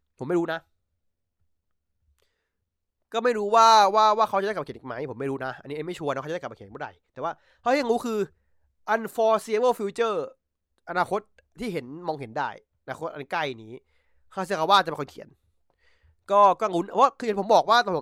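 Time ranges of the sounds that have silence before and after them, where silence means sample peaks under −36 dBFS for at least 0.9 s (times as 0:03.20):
0:03.12–0:15.23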